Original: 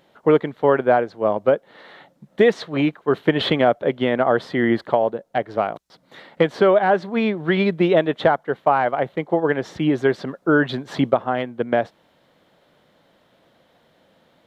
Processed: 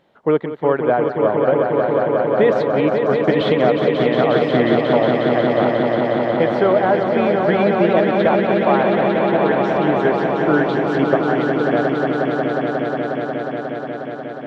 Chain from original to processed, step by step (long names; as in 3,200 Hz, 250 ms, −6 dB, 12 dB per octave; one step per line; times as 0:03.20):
high-shelf EQ 4,400 Hz −10.5 dB
echo that builds up and dies away 180 ms, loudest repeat 5, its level −6 dB
level −1 dB